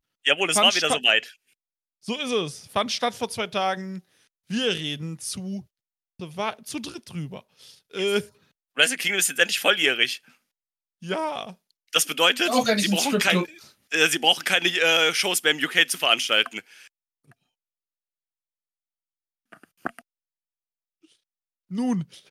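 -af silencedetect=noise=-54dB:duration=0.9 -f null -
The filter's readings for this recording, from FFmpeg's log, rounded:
silence_start: 17.33
silence_end: 19.52 | silence_duration: 2.20
silence_start: 20.01
silence_end: 21.04 | silence_duration: 1.02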